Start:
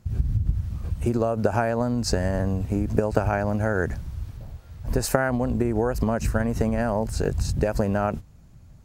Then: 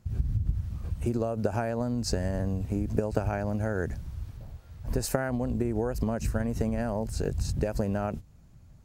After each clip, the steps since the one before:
dynamic equaliser 1,200 Hz, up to −5 dB, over −39 dBFS, Q 0.74
level −4.5 dB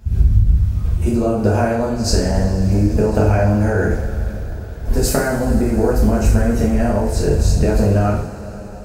echo ahead of the sound 80 ms −19 dB
coupled-rooms reverb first 0.56 s, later 5 s, from −18 dB, DRR −5.5 dB
level +6 dB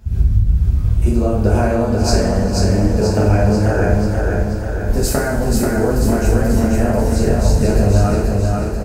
repeating echo 486 ms, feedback 56%, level −3 dB
level −1 dB

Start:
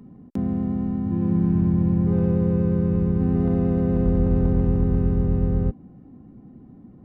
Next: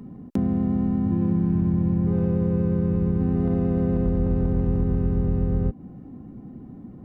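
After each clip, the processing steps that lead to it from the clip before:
downward compressor 5 to 1, threshold −24 dBFS, peak gain reduction 9 dB
level +5 dB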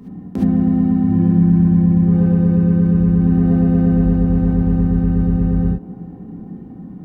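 delay with a band-pass on its return 273 ms, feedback 75%, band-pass 520 Hz, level −14.5 dB
reverb whose tail is shaped and stops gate 90 ms rising, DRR −4.5 dB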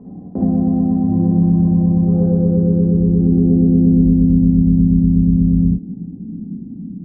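low-pass filter sweep 650 Hz → 240 Hz, 0:02.04–0:04.60
level −1.5 dB

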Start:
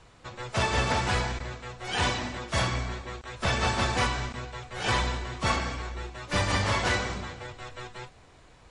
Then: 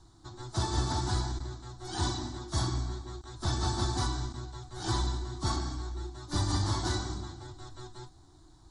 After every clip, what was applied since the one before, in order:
drawn EQ curve 110 Hz 0 dB, 230 Hz −8 dB, 330 Hz +7 dB, 490 Hz −22 dB, 780 Hz −5 dB, 1,500 Hz −11 dB, 2,600 Hz −27 dB, 3,800 Hz −2 dB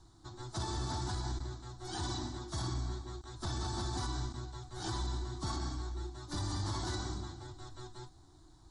brickwall limiter −25.5 dBFS, peak gain reduction 8.5 dB
level −2.5 dB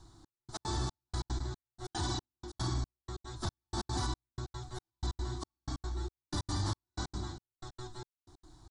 gate pattern "xxx...x." 185 BPM −60 dB
level +3 dB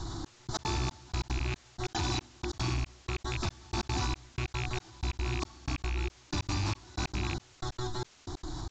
loose part that buzzes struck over −41 dBFS, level −32 dBFS
downsampling to 16,000 Hz
envelope flattener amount 70%
level +1 dB

